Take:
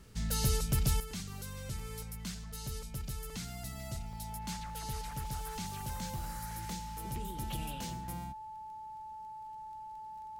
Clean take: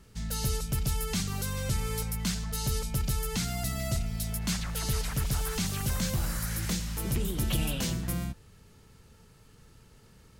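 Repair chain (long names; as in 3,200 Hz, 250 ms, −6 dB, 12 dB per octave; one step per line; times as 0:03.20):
click removal
notch filter 870 Hz, Q 30
repair the gap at 0:01.11/0:01.79/0:03.30/0:04.13/0:05.11/0:05.86/0:06.51, 2.2 ms
level correction +10.5 dB, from 0:01.00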